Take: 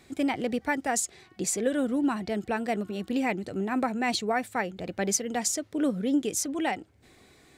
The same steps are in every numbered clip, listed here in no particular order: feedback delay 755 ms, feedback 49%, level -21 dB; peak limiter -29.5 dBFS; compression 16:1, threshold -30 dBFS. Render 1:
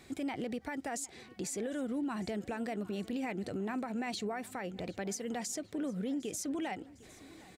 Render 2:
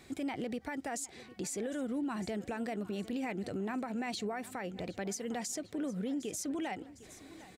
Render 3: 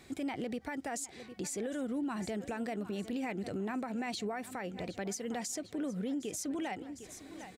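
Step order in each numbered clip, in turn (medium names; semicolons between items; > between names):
compression > peak limiter > feedback delay; compression > feedback delay > peak limiter; feedback delay > compression > peak limiter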